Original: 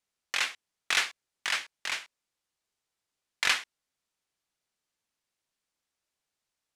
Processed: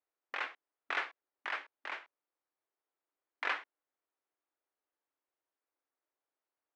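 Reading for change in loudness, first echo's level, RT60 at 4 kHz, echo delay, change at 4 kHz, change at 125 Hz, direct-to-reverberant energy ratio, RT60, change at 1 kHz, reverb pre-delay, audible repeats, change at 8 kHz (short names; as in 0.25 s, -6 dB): -9.5 dB, none, none, none, -16.5 dB, n/a, none, none, -2.5 dB, none, none, under -25 dB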